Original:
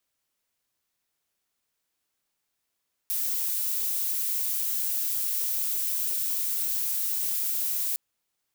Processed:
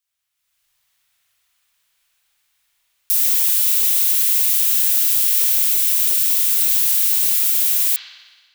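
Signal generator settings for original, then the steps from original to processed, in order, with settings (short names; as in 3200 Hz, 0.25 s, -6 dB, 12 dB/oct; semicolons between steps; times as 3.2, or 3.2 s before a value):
noise violet, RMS -28 dBFS 4.86 s
passive tone stack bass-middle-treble 10-0-10; AGC gain up to 13 dB; spring tank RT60 1.4 s, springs 43 ms, chirp 20 ms, DRR -5.5 dB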